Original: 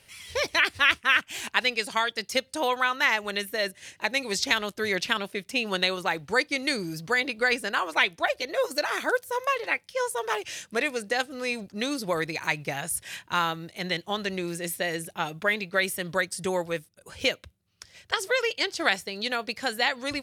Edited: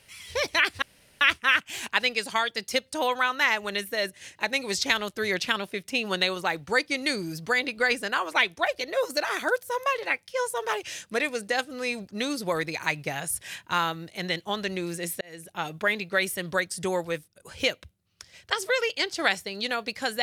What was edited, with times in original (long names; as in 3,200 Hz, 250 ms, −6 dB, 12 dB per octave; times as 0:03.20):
0:00.82: splice in room tone 0.39 s
0:14.82–0:15.31: fade in